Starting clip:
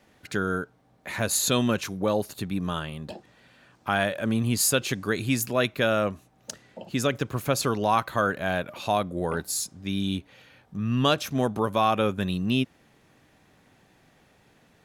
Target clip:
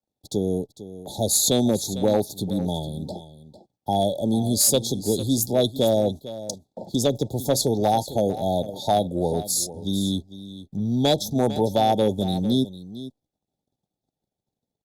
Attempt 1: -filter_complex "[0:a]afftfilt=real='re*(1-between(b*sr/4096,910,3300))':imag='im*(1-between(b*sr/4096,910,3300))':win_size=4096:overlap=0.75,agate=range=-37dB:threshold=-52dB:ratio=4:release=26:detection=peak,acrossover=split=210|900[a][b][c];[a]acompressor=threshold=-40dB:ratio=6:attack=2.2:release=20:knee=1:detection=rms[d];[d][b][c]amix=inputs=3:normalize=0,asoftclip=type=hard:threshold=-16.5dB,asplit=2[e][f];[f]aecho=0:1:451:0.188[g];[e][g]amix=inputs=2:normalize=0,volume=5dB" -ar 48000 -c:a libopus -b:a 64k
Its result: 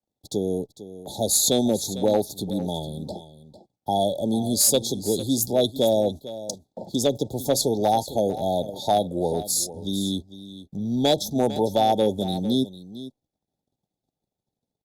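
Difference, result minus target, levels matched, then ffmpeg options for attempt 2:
compressor: peak gain reduction +6.5 dB
-filter_complex "[0:a]afftfilt=real='re*(1-between(b*sr/4096,910,3300))':imag='im*(1-between(b*sr/4096,910,3300))':win_size=4096:overlap=0.75,agate=range=-37dB:threshold=-52dB:ratio=4:release=26:detection=peak,acrossover=split=210|900[a][b][c];[a]acompressor=threshold=-32dB:ratio=6:attack=2.2:release=20:knee=1:detection=rms[d];[d][b][c]amix=inputs=3:normalize=0,asoftclip=type=hard:threshold=-16.5dB,asplit=2[e][f];[f]aecho=0:1:451:0.188[g];[e][g]amix=inputs=2:normalize=0,volume=5dB" -ar 48000 -c:a libopus -b:a 64k

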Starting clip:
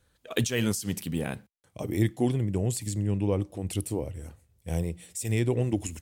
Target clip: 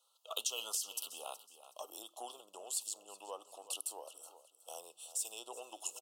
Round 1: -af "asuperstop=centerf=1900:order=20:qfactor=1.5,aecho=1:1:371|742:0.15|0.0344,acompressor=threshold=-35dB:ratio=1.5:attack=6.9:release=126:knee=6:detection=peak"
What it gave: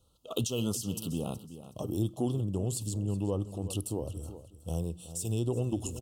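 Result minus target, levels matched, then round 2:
1000 Hz band -6.5 dB
-af "asuperstop=centerf=1900:order=20:qfactor=1.5,aecho=1:1:371|742:0.15|0.0344,acompressor=threshold=-35dB:ratio=1.5:attack=6.9:release=126:knee=6:detection=peak,highpass=f=720:w=0.5412,highpass=f=720:w=1.3066"

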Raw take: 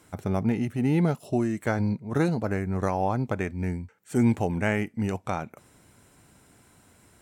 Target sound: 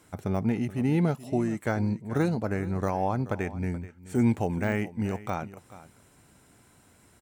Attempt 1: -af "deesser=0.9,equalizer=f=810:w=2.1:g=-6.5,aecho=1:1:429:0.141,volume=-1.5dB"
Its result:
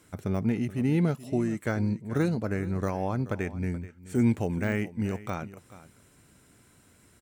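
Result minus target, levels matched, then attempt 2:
1000 Hz band -4.5 dB
-af "deesser=0.9,aecho=1:1:429:0.141,volume=-1.5dB"

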